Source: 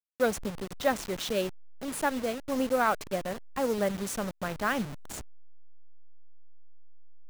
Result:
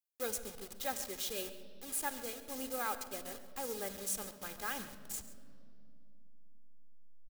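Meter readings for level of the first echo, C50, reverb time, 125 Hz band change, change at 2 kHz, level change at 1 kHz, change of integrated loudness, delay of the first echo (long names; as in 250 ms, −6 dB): −16.0 dB, 11.5 dB, 2.6 s, −17.5 dB, −10.5 dB, −11.0 dB, −8.5 dB, 137 ms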